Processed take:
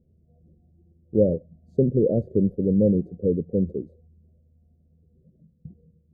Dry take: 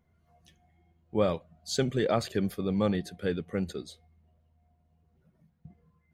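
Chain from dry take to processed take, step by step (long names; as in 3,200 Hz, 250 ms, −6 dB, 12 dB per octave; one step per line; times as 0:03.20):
elliptic low-pass filter 530 Hz, stop band 50 dB
level +8.5 dB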